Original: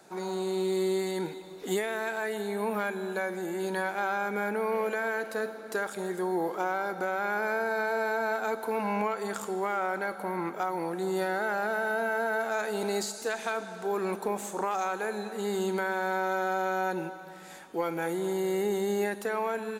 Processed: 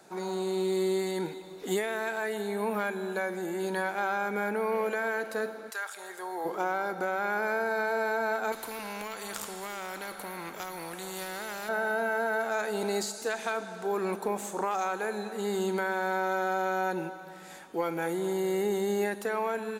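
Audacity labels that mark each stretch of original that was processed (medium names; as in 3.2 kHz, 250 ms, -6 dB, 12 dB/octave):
5.690000	6.440000	high-pass 1.3 kHz -> 600 Hz
8.520000	11.690000	spectrum-flattening compressor 2:1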